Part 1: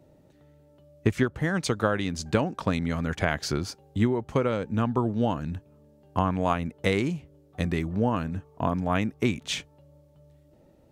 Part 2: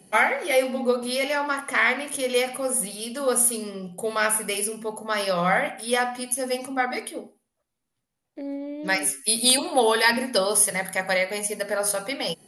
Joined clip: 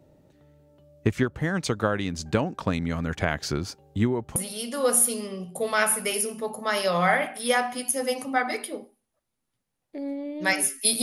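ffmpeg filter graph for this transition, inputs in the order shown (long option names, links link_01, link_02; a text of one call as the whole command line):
ffmpeg -i cue0.wav -i cue1.wav -filter_complex "[0:a]apad=whole_dur=11.02,atrim=end=11.02,atrim=end=4.362[link_01];[1:a]atrim=start=2.788:end=9.45[link_02];[link_01][link_02]acrossfade=duration=0.004:curve1=hsin:curve2=hsin" out.wav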